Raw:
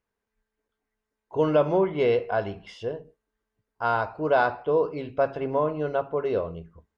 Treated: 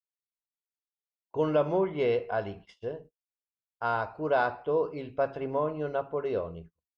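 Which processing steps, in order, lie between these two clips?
gate -43 dBFS, range -33 dB; trim -4.5 dB

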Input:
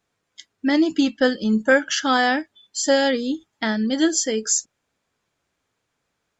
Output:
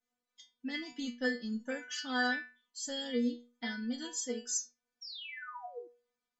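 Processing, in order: painted sound fall, 5.01–5.88 s, 330–5800 Hz -31 dBFS; inharmonic resonator 240 Hz, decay 0.37 s, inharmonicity 0.002

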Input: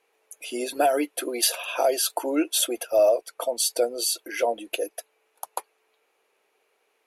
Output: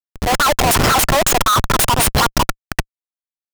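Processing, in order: Schmitt trigger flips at -28 dBFS; level rider gain up to 14 dB; speed mistake 7.5 ips tape played at 15 ips

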